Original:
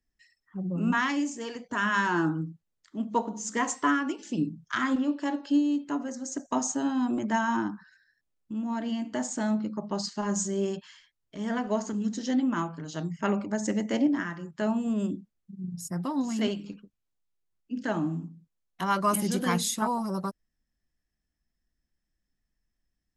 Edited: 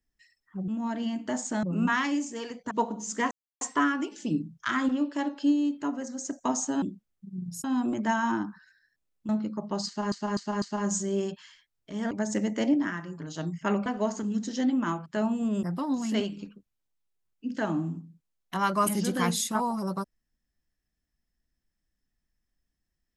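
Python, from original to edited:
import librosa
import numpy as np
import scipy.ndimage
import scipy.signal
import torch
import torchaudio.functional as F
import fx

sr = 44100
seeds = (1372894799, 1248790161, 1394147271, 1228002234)

y = fx.edit(x, sr, fx.cut(start_s=1.76, length_s=1.32),
    fx.insert_silence(at_s=3.68, length_s=0.3),
    fx.move(start_s=8.54, length_s=0.95, to_s=0.68),
    fx.repeat(start_s=10.07, length_s=0.25, count=4),
    fx.swap(start_s=11.56, length_s=1.2, other_s=13.44, other_length_s=1.07),
    fx.move(start_s=15.08, length_s=0.82, to_s=6.89), tone=tone)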